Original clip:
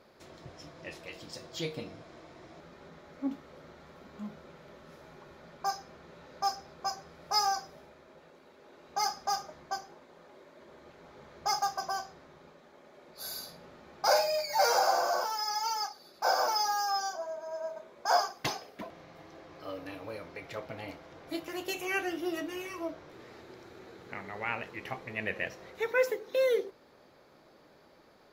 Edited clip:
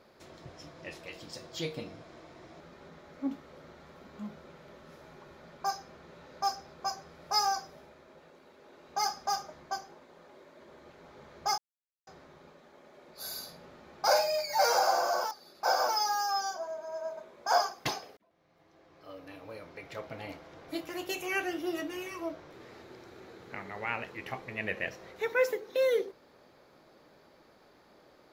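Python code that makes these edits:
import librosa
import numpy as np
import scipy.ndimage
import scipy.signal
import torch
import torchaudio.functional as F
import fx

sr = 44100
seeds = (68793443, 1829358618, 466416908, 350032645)

y = fx.edit(x, sr, fx.silence(start_s=11.58, length_s=0.49),
    fx.cut(start_s=15.31, length_s=0.59),
    fx.fade_in_span(start_s=18.76, length_s=2.09), tone=tone)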